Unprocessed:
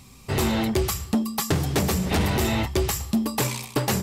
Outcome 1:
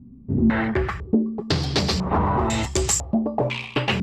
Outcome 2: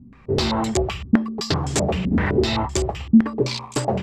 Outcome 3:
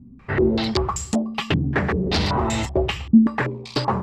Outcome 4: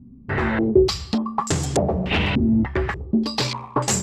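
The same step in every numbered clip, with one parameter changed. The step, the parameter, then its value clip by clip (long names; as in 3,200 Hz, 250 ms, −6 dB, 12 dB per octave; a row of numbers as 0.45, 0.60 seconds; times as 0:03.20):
low-pass on a step sequencer, speed: 2, 7.8, 5.2, 3.4 Hertz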